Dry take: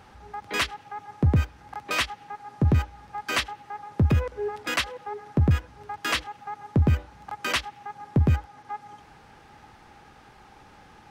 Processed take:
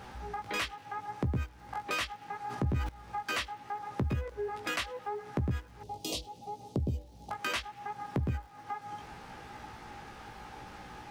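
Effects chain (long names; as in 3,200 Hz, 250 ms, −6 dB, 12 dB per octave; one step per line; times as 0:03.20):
chorus effect 0.74 Hz, delay 16 ms, depth 2.6 ms
0:05.83–0:07.31: Chebyshev band-stop filter 580–4,100 Hz, order 2
downward compressor 2.5 to 1, threshold −44 dBFS, peak gain reduction 16.5 dB
surface crackle 600 per second −65 dBFS
0:02.38–0:02.89: level that may fall only so fast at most 40 dB per second
level +7 dB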